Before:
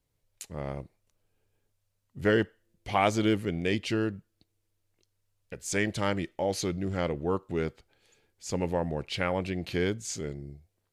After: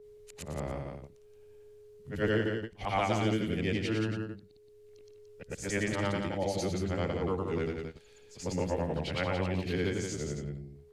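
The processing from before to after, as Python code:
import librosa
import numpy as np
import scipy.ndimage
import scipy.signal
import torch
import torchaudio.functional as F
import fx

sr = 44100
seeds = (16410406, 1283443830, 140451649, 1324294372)

y = fx.frame_reverse(x, sr, frame_ms=238.0)
y = fx.high_shelf(y, sr, hz=11000.0, db=-7.5)
y = y + 10.0 ** (-62.0 / 20.0) * np.sin(2.0 * np.pi * 420.0 * np.arange(len(y)) / sr)
y = fx.low_shelf(y, sr, hz=65.0, db=9.0)
y = y + 10.0 ** (-7.0 / 20.0) * np.pad(y, (int(173 * sr / 1000.0), 0))[:len(y)]
y = fx.band_squash(y, sr, depth_pct=40)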